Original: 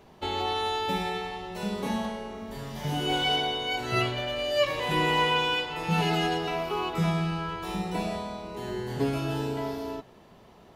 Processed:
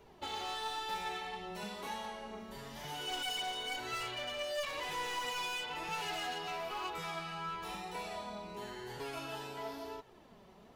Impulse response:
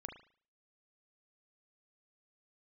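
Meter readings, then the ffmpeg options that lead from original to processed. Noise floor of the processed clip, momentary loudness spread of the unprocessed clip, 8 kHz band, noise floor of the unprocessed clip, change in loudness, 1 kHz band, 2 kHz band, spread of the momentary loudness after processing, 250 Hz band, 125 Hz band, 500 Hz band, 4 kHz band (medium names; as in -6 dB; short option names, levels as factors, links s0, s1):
-59 dBFS, 11 LU, -3.0 dB, -54 dBFS, -11.0 dB, -9.5 dB, -9.5 dB, 9 LU, -18.0 dB, -21.5 dB, -13.0 dB, -9.5 dB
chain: -filter_complex "[0:a]acrossover=split=630|4500[s0][s1][s2];[s0]acompressor=threshold=0.00794:ratio=6[s3];[s3][s1][s2]amix=inputs=3:normalize=0,asoftclip=type=hard:threshold=0.0282,flanger=delay=2.1:depth=3.2:regen=41:speed=1:shape=sinusoidal,volume=0.841"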